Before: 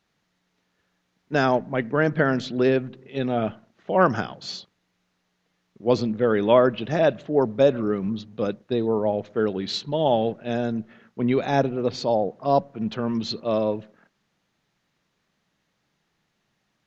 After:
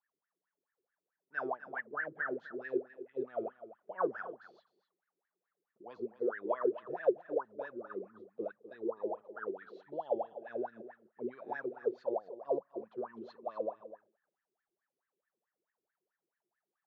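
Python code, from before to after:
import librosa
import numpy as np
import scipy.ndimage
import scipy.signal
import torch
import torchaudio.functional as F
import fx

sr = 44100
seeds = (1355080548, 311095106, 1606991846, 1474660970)

p1 = fx.peak_eq(x, sr, hz=140.0, db=5.0, octaves=3.0)
p2 = fx.rider(p1, sr, range_db=4, speed_s=0.5)
p3 = p1 + F.gain(torch.from_numpy(p2), -1.0).numpy()
p4 = fx.wah_lfo(p3, sr, hz=4.6, low_hz=350.0, high_hz=1800.0, q=18.0)
p5 = p4 + 10.0 ** (-13.5 / 20.0) * np.pad(p4, (int(252 * sr / 1000.0), 0))[:len(p4)]
y = F.gain(torch.from_numpy(p5), -7.5).numpy()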